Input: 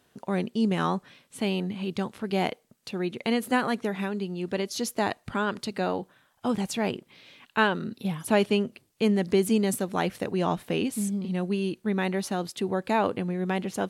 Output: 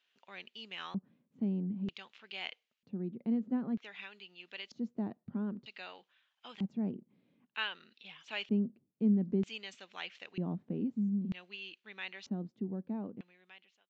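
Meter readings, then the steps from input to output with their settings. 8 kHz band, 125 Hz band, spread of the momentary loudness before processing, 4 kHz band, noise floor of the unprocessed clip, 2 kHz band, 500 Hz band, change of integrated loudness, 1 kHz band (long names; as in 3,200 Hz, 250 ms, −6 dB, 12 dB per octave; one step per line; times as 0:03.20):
below −25 dB, −8.5 dB, 7 LU, −8.5 dB, −67 dBFS, −12.0 dB, −17.5 dB, −9.5 dB, −21.0 dB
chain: fade-out on the ending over 1.48 s
auto-filter band-pass square 0.53 Hz 210–2,800 Hz
downsampling to 16,000 Hz
level −3 dB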